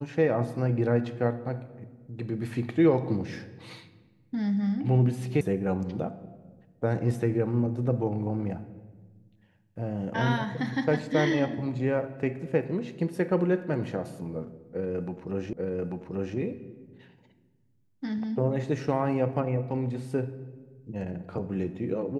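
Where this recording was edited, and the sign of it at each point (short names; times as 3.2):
5.41 sound cut off
15.53 repeat of the last 0.84 s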